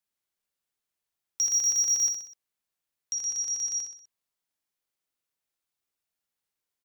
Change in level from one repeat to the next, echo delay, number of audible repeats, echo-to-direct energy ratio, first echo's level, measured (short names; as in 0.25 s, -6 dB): -6.0 dB, 63 ms, 4, -5.5 dB, -6.5 dB